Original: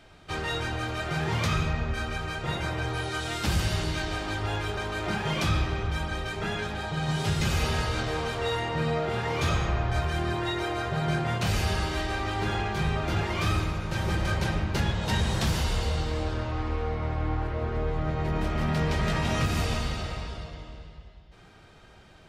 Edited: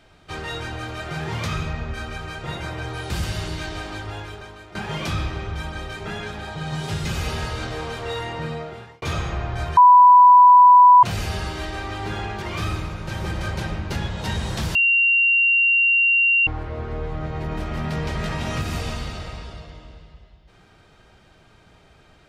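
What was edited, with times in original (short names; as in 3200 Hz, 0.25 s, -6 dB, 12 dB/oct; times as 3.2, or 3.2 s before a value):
3.1–3.46 cut
4.19–5.11 fade out, to -16 dB
8.72–9.38 fade out
10.13–11.39 bleep 989 Hz -6.5 dBFS
12.78–13.26 cut
15.59–17.31 bleep 2760 Hz -14 dBFS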